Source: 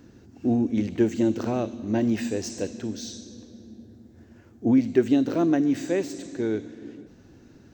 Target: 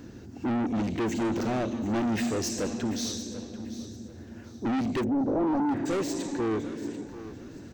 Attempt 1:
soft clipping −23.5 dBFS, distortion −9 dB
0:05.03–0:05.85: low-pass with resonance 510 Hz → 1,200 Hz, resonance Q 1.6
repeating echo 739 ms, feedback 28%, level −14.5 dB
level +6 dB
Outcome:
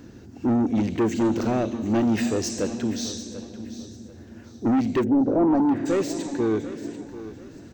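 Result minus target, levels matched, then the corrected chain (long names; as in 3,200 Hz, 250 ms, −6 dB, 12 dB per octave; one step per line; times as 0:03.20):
soft clipping: distortion −5 dB
soft clipping −31.5 dBFS, distortion −4 dB
0:05.03–0:05.85: low-pass with resonance 510 Hz → 1,200 Hz, resonance Q 1.6
repeating echo 739 ms, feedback 28%, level −14.5 dB
level +6 dB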